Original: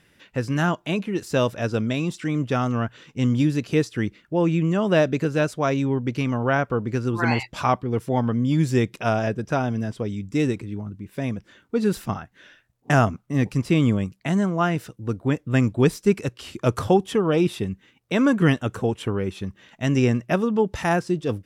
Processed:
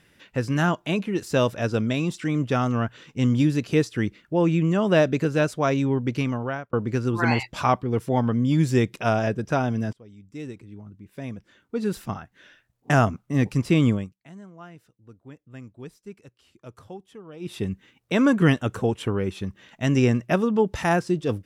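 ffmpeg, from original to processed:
-filter_complex "[0:a]asplit=5[a][b][c][d][e];[a]atrim=end=6.73,asetpts=PTS-STARTPTS,afade=t=out:st=6.19:d=0.54[f];[b]atrim=start=6.73:end=9.93,asetpts=PTS-STARTPTS,afade=t=in:d=0.004:c=hsin,afade=t=out:st=3.196:d=0.004:c=hsin:silence=0.0668344[g];[c]atrim=start=9.93:end=14.14,asetpts=PTS-STARTPTS,afade=t=in:d=3.41:silence=0.0668344,afade=t=out:st=3.95:d=0.26:silence=0.0794328[h];[d]atrim=start=14.14:end=17.4,asetpts=PTS-STARTPTS,volume=-22dB[i];[e]atrim=start=17.4,asetpts=PTS-STARTPTS,afade=t=in:d=0.26:silence=0.0794328[j];[f][g][h][i][j]concat=n=5:v=0:a=1"

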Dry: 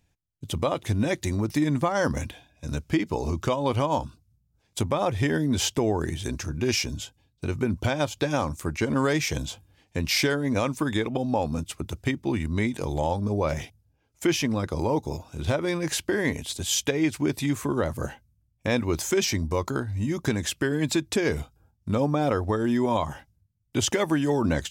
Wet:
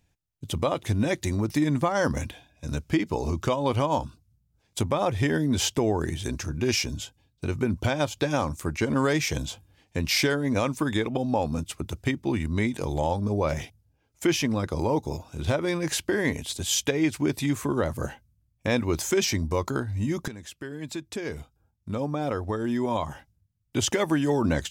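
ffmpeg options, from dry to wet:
-filter_complex "[0:a]asplit=2[a][b];[a]atrim=end=20.28,asetpts=PTS-STARTPTS,afade=t=out:st=20.276:d=0.004:c=hsin:silence=0.177828[c];[b]atrim=start=20.28,asetpts=PTS-STARTPTS,afade=t=in:d=3.9:silence=0.177828[d];[c][d]concat=n=2:v=0:a=1"

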